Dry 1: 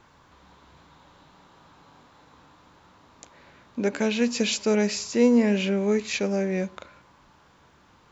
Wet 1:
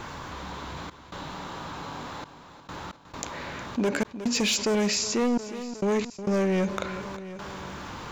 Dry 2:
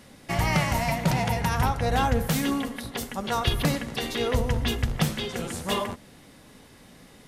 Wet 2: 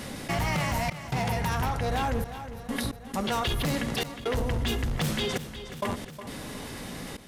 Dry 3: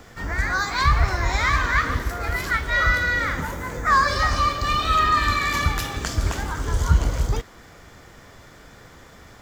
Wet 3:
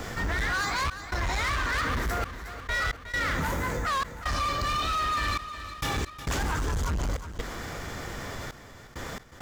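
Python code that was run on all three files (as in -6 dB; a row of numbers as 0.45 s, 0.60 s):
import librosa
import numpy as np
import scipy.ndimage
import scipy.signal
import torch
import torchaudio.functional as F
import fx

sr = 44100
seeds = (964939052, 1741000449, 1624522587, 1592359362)

y = fx.rider(x, sr, range_db=4, speed_s=0.5)
y = np.clip(y, -10.0 ** (-22.5 / 20.0), 10.0 ** (-22.5 / 20.0))
y = fx.step_gate(y, sr, bpm=67, pattern='xxxx.xxxxx..x.', floor_db=-60.0, edge_ms=4.5)
y = fx.echo_feedback(y, sr, ms=362, feedback_pct=50, wet_db=-23)
y = fx.env_flatten(y, sr, amount_pct=50)
y = y * 10.0 ** (-30 / 20.0) / np.sqrt(np.mean(np.square(y)))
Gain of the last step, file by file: +0.5 dB, -2.0 dB, -3.5 dB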